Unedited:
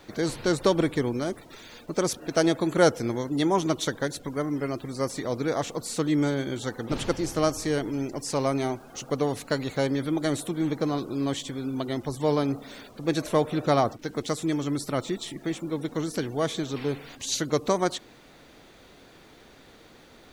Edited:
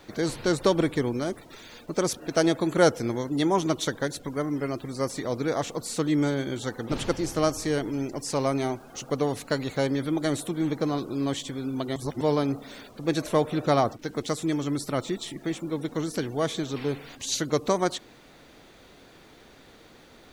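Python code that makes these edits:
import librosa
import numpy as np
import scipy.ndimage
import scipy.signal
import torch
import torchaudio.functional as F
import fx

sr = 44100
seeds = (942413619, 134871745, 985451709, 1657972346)

y = fx.edit(x, sr, fx.reverse_span(start_s=11.96, length_s=0.25), tone=tone)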